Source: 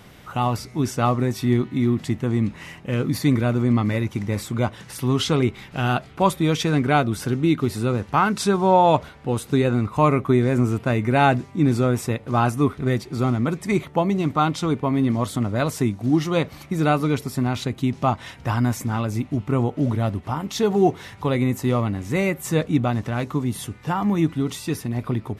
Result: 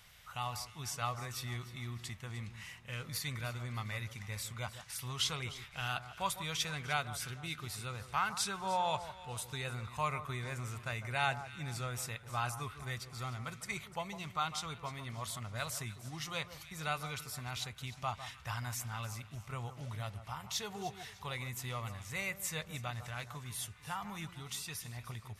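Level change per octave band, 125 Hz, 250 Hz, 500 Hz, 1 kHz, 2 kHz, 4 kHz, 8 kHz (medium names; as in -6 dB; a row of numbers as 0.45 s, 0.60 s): -19.0 dB, -28.5 dB, -23.0 dB, -15.5 dB, -10.5 dB, -7.0 dB, -6.0 dB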